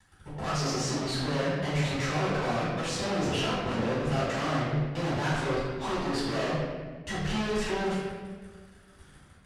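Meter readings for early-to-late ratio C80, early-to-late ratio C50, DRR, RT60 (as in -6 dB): 1.5 dB, -1.0 dB, -10.5 dB, 1.5 s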